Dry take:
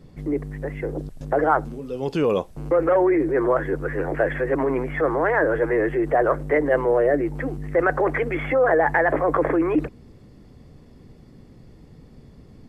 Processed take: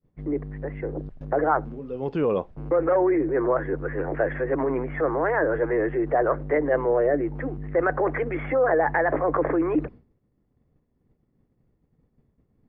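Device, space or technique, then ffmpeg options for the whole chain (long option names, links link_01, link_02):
hearing-loss simulation: -af "lowpass=2000,agate=range=-33dB:threshold=-34dB:ratio=3:detection=peak,volume=-2.5dB"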